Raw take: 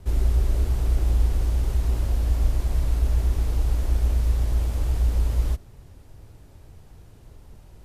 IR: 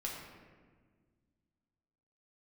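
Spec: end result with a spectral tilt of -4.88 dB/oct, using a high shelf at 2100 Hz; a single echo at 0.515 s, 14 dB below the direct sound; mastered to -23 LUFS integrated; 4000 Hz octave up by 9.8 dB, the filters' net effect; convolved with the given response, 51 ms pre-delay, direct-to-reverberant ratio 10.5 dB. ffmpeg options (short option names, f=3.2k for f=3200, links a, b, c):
-filter_complex "[0:a]highshelf=f=2.1k:g=7,equalizer=f=4k:t=o:g=5.5,aecho=1:1:515:0.2,asplit=2[a][b];[1:a]atrim=start_sample=2205,adelay=51[c];[b][c]afir=irnorm=-1:irlink=0,volume=-11.5dB[d];[a][d]amix=inputs=2:normalize=0,volume=0.5dB"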